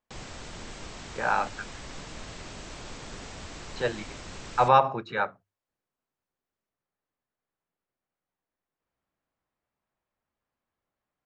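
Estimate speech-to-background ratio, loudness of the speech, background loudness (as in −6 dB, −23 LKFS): 15.5 dB, −26.5 LKFS, −42.0 LKFS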